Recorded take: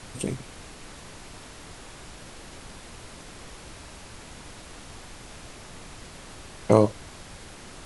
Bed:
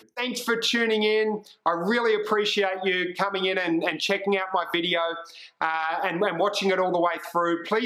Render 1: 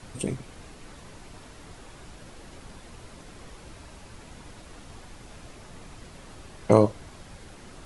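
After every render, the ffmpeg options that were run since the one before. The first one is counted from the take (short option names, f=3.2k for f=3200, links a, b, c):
-af "afftdn=nr=6:nf=-45"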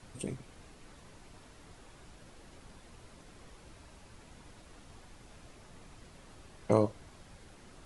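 -af "volume=-8.5dB"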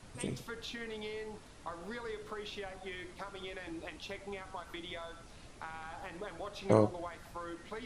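-filter_complex "[1:a]volume=-20dB[a];[0:a][a]amix=inputs=2:normalize=0"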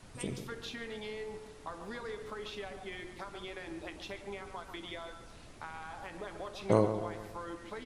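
-filter_complex "[0:a]asplit=2[a][b];[b]adelay=141,lowpass=f=2.1k:p=1,volume=-9dB,asplit=2[c][d];[d]adelay=141,lowpass=f=2.1k:p=1,volume=0.5,asplit=2[e][f];[f]adelay=141,lowpass=f=2.1k:p=1,volume=0.5,asplit=2[g][h];[h]adelay=141,lowpass=f=2.1k:p=1,volume=0.5,asplit=2[i][j];[j]adelay=141,lowpass=f=2.1k:p=1,volume=0.5,asplit=2[k][l];[l]adelay=141,lowpass=f=2.1k:p=1,volume=0.5[m];[a][c][e][g][i][k][m]amix=inputs=7:normalize=0"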